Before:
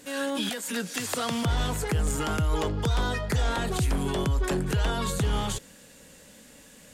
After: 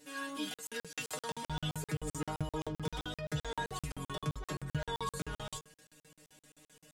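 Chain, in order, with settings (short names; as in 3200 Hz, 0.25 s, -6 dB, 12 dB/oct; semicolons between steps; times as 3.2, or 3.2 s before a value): metallic resonator 150 Hz, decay 0.24 s, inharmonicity 0.002; crackling interface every 0.13 s, samples 2048, zero, from 0.54; gain +1 dB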